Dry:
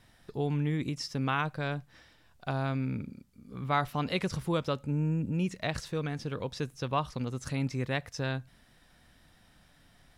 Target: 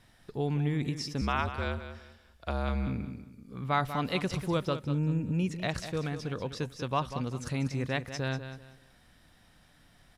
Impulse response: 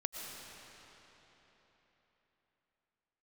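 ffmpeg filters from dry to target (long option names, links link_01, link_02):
-filter_complex "[0:a]aresample=32000,aresample=44100,asettb=1/sr,asplit=3[link_01][link_02][link_03];[link_01]atrim=end=1.214[link_04];[link_02]atrim=start=1.21:end=2.87,asetpts=PTS-STARTPTS,afade=type=in:duration=0.004:curve=qsin,afade=type=out:start_time=1.656:duration=0.004:curve=qsin,afreqshift=-62[link_05];[link_03]atrim=start=2.866[link_06];[link_04][link_05]acrossfade=duration=0.004:curve1=hsin:curve2=qsin[link_07];[link_07][link_06]acrossfade=duration=0.004:curve1=qsin:curve2=hsin,aecho=1:1:192|384|576:0.299|0.0806|0.0218"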